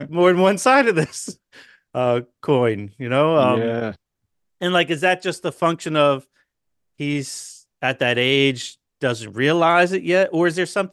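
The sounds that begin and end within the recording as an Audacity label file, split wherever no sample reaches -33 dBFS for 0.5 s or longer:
4.610000	6.200000	sound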